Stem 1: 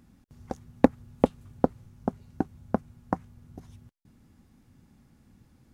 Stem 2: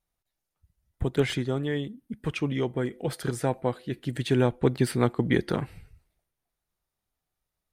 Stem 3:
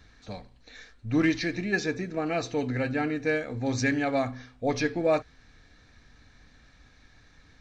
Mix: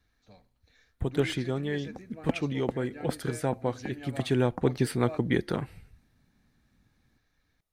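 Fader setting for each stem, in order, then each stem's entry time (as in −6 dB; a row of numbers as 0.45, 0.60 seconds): −10.5, −2.5, −16.5 decibels; 1.45, 0.00, 0.00 seconds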